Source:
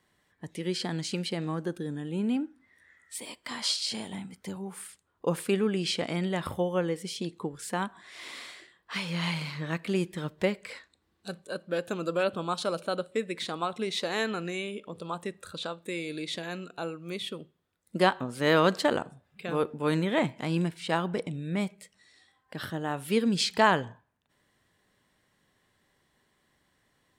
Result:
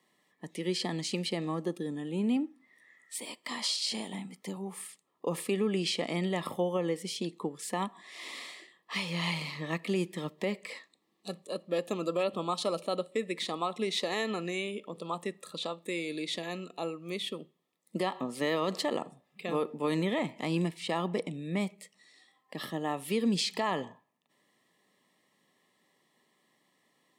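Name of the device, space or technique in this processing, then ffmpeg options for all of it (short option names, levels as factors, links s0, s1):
PA system with an anti-feedback notch: -af "highpass=f=170:w=0.5412,highpass=f=170:w=1.3066,asuperstop=centerf=1500:order=8:qfactor=4.5,alimiter=limit=0.0944:level=0:latency=1:release=76"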